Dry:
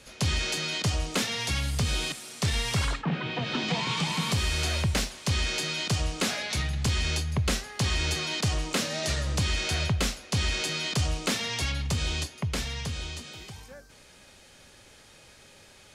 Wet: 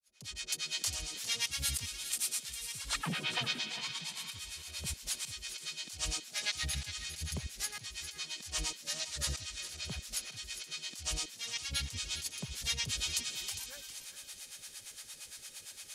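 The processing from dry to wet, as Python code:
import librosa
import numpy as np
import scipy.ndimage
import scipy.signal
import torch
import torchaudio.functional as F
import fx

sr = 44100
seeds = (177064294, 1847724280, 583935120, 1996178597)

y = fx.fade_in_head(x, sr, length_s=2.07)
y = librosa.effects.preemphasis(y, coef=0.9, zi=[0.0])
y = fx.over_compress(y, sr, threshold_db=-43.0, ratio=-0.5)
y = fx.harmonic_tremolo(y, sr, hz=8.7, depth_pct=100, crossover_hz=570.0)
y = fx.echo_thinned(y, sr, ms=404, feedback_pct=46, hz=830.0, wet_db=-10.0)
y = y * 10.0 ** (9.0 / 20.0)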